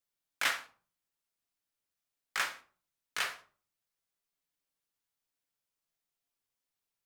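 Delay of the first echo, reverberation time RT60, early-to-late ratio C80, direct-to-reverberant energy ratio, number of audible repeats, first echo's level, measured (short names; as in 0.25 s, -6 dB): none, 0.40 s, 19.0 dB, 5.5 dB, none, none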